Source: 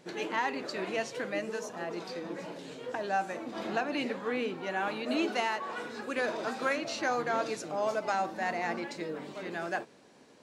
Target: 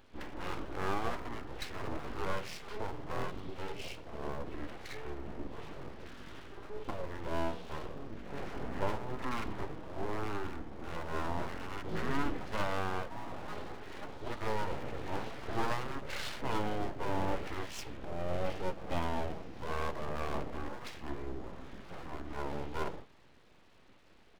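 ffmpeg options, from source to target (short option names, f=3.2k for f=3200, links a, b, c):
-filter_complex "[0:a]asetrate=18846,aresample=44100,asplit=2[a][b];[b]adelay=14,volume=-12dB[c];[a][c]amix=inputs=2:normalize=0,aeval=exprs='abs(val(0))':c=same,highshelf=f=5k:g=7.5,volume=-1.5dB"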